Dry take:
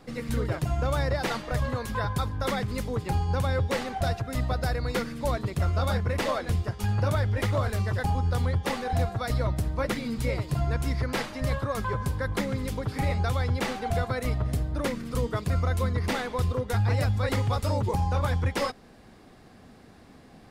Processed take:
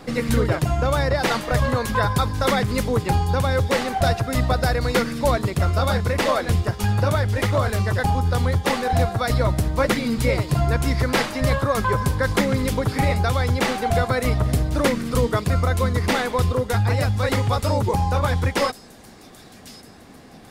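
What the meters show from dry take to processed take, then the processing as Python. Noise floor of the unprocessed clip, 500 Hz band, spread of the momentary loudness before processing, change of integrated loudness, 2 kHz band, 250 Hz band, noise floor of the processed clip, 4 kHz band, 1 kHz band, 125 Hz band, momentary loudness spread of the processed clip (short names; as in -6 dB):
-52 dBFS, +8.5 dB, 4 LU, +7.0 dB, +8.5 dB, +8.0 dB, -45 dBFS, +8.5 dB, +8.5 dB, +5.5 dB, 1 LU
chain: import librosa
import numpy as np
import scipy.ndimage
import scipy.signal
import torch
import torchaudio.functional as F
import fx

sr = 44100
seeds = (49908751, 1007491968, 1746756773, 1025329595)

y = fx.low_shelf(x, sr, hz=120.0, db=-4.5)
y = fx.rider(y, sr, range_db=10, speed_s=0.5)
y = fx.echo_wet_highpass(y, sr, ms=1102, feedback_pct=45, hz=4800.0, wet_db=-10.0)
y = F.gain(torch.from_numpy(y), 8.5).numpy()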